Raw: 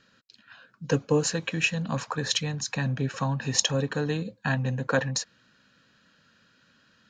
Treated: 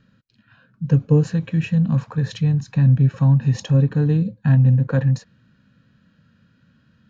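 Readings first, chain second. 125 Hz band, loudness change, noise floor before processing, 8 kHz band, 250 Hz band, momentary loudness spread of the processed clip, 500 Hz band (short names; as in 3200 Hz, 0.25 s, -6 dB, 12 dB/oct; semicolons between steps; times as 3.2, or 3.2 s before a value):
+14.5 dB, +9.0 dB, -64 dBFS, under -10 dB, +10.0 dB, 6 LU, +0.5 dB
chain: tone controls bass +13 dB, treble -8 dB; harmonic-percussive split harmonic +7 dB; low shelf 490 Hz +4.5 dB; gain -8 dB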